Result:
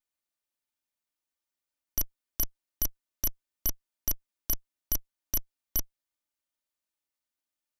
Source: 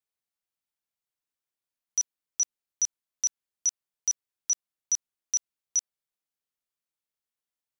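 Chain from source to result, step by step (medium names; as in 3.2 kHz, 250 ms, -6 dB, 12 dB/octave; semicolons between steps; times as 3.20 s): comb filter that takes the minimum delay 3.3 ms; trim +2 dB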